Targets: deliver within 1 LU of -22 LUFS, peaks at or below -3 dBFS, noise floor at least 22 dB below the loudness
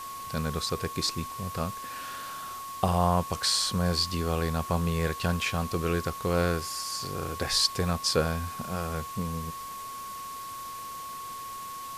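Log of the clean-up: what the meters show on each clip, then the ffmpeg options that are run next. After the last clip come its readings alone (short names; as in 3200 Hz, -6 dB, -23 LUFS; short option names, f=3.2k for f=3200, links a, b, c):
steady tone 1100 Hz; tone level -37 dBFS; noise floor -39 dBFS; noise floor target -52 dBFS; loudness -30.0 LUFS; peak -8.5 dBFS; loudness target -22.0 LUFS
-> -af "bandreject=f=1.1k:w=30"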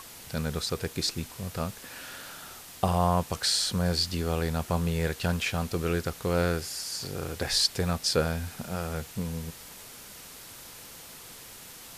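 steady tone none; noise floor -47 dBFS; noise floor target -51 dBFS
-> -af "afftdn=nr=6:nf=-47"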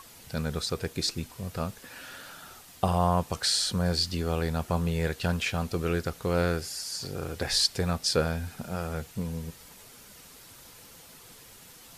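noise floor -51 dBFS; loudness -29.0 LUFS; peak -9.0 dBFS; loudness target -22.0 LUFS
-> -af "volume=7dB,alimiter=limit=-3dB:level=0:latency=1"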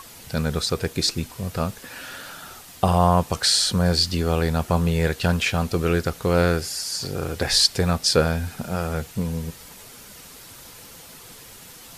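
loudness -22.0 LUFS; peak -3.0 dBFS; noise floor -44 dBFS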